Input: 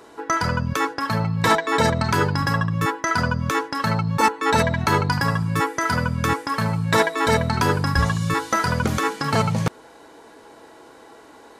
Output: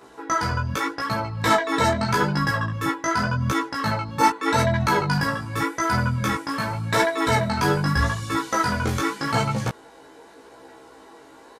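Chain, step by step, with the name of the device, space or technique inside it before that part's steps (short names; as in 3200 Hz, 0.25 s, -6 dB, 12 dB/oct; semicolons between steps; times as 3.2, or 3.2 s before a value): double-tracked vocal (doubler 15 ms -3 dB; chorus 0.84 Hz, delay 15 ms, depth 6.9 ms)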